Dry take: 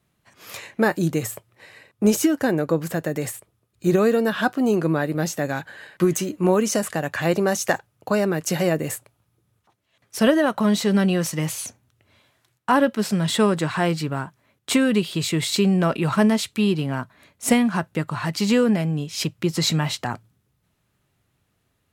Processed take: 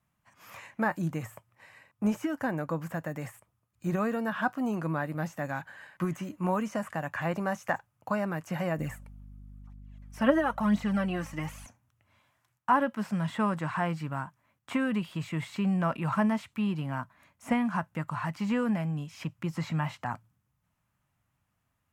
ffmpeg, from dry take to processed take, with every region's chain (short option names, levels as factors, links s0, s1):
-filter_complex "[0:a]asettb=1/sr,asplit=3[s0][s1][s2];[s0]atrim=end=8.784[s3];[s1]atrim=start=8.78:end=11.66,asetpts=PTS-STARTPTS,afade=t=in:d=0.004:c=qsin,afade=t=out:st=2.876:d=0.004:c=qsin,bandreject=f=1000:w=13,aphaser=in_gain=1:out_gain=1:delay=3.8:decay=0.53:speed=1:type=triangular,aeval=exprs='val(0)+0.0112*(sin(2*PI*50*n/s)+sin(2*PI*2*50*n/s)/2+sin(2*PI*3*50*n/s)/3+sin(2*PI*4*50*n/s)/4+sin(2*PI*5*50*n/s)/5)':c=same[s4];[s2]atrim=start=11.656[s5];[s3][s4]acrossfade=d=0.004:c1=hsin:c2=qsin[s6];[s6][s5]acrossfade=d=0.004:c1=qsin:c2=hsin,acrossover=split=2800[s7][s8];[s8]acompressor=threshold=0.00794:ratio=4:attack=1:release=60[s9];[s7][s9]amix=inputs=2:normalize=0,equalizer=f=400:t=o:w=0.67:g=-12,equalizer=f=1000:t=o:w=0.67:g=5,equalizer=f=4000:t=o:w=0.67:g=-8,equalizer=f=10000:t=o:w=0.67:g=-3,volume=0.447"